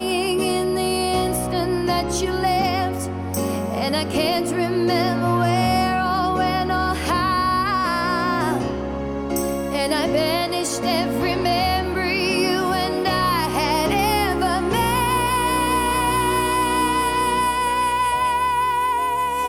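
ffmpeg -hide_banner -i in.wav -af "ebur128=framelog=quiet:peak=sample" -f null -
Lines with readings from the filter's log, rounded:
Integrated loudness:
  I:         -20.4 LUFS
  Threshold: -30.4 LUFS
Loudness range:
  LRA:         2.5 LU
  Threshold: -40.4 LUFS
  LRA low:   -21.9 LUFS
  LRA high:  -19.4 LUFS
Sample peak:
  Peak:       -9.9 dBFS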